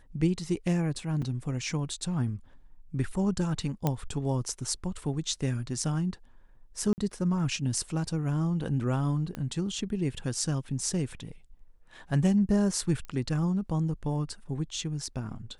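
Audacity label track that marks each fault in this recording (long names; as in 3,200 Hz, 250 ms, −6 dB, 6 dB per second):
1.220000	1.220000	drop-out 4.5 ms
3.870000	3.870000	click −13 dBFS
6.930000	6.980000	drop-out 49 ms
9.350000	9.350000	click −22 dBFS
13.050000	13.050000	click −28 dBFS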